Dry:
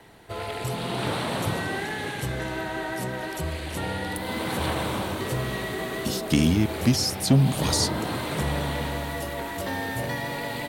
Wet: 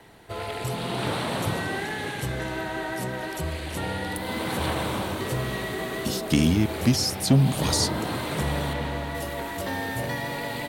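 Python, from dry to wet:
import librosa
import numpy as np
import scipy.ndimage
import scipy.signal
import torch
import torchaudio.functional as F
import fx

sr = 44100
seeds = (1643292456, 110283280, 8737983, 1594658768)

y = fx.lowpass(x, sr, hz=3900.0, slope=6, at=(8.73, 9.15))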